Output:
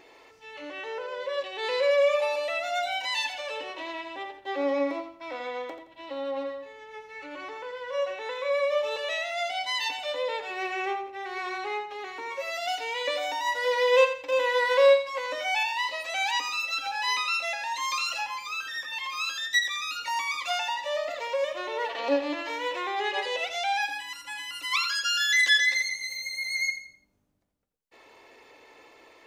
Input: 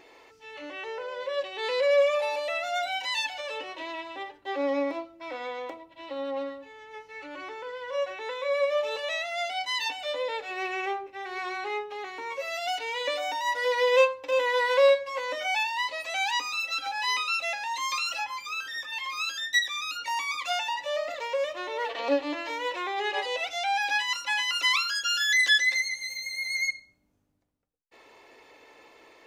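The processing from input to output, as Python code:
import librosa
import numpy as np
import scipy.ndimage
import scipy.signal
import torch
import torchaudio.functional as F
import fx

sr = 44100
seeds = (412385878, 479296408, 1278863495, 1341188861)

y = fx.spec_box(x, sr, start_s=23.86, length_s=0.86, low_hz=350.0, high_hz=7400.0, gain_db=-10)
y = fx.echo_feedback(y, sr, ms=85, feedback_pct=32, wet_db=-10)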